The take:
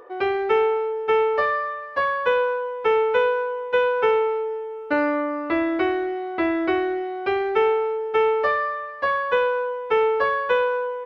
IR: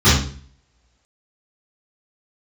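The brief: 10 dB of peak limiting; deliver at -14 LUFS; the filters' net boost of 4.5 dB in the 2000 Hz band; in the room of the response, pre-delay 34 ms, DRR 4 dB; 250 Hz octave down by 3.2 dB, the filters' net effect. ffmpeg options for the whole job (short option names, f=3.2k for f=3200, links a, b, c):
-filter_complex "[0:a]equalizer=f=250:t=o:g=-5.5,equalizer=f=2k:t=o:g=6,alimiter=limit=-18dB:level=0:latency=1,asplit=2[a][b];[1:a]atrim=start_sample=2205,adelay=34[c];[b][c]afir=irnorm=-1:irlink=0,volume=-28.5dB[d];[a][d]amix=inputs=2:normalize=0,volume=10.5dB"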